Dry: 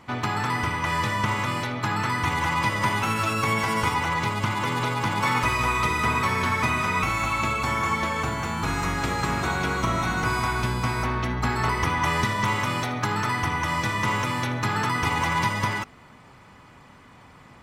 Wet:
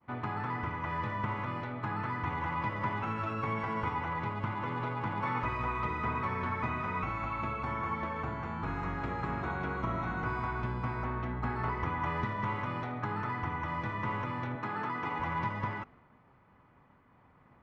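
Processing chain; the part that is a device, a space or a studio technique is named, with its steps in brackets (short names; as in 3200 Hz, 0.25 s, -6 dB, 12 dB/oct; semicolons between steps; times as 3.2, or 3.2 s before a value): hearing-loss simulation (LPF 1700 Hz 12 dB/oct; expander -46 dBFS); 14.55–15.2 HPF 190 Hz 12 dB/oct; gain -8.5 dB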